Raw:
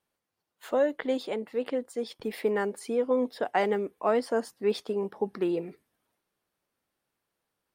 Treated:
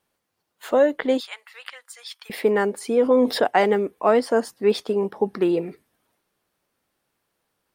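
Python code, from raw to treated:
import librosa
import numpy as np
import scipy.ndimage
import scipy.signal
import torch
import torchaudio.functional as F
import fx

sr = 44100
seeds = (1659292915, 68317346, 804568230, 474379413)

y = fx.highpass(x, sr, hz=1200.0, slope=24, at=(1.2, 2.3))
y = fx.env_flatten(y, sr, amount_pct=50, at=(2.97, 3.47))
y = F.gain(torch.from_numpy(y), 7.5).numpy()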